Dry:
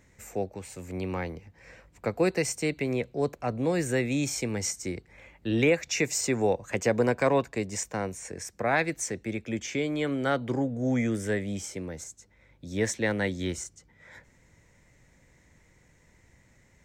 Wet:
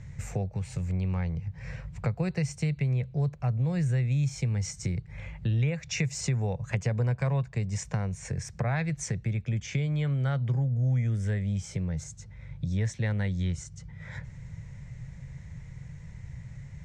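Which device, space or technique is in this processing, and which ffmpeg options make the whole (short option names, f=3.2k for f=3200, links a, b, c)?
jukebox: -af "lowpass=6.8k,lowshelf=f=200:t=q:w=3:g=12,acompressor=threshold=-35dB:ratio=3,volume=5dB"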